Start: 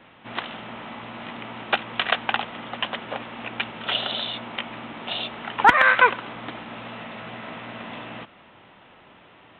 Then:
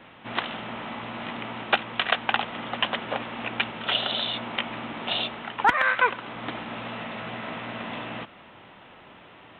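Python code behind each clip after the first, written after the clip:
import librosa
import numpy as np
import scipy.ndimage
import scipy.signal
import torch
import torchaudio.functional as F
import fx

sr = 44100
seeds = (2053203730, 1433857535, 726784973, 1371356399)

y = fx.rider(x, sr, range_db=4, speed_s=0.5)
y = y * librosa.db_to_amplitude(-2.0)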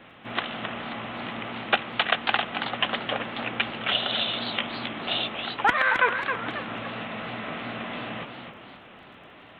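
y = fx.notch(x, sr, hz=930.0, q=9.8)
y = fx.dmg_crackle(y, sr, seeds[0], per_s=12.0, level_db=-53.0)
y = fx.echo_warbled(y, sr, ms=271, feedback_pct=43, rate_hz=2.8, cents=184, wet_db=-7)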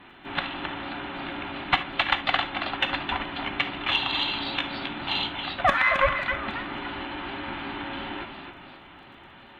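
y = fx.band_invert(x, sr, width_hz=500)
y = fx.cheby_harmonics(y, sr, harmonics=(4, 7), levels_db=(-35, -44), full_scale_db=-6.0)
y = fx.rev_gated(y, sr, seeds[1], gate_ms=90, shape='flat', drr_db=9.5)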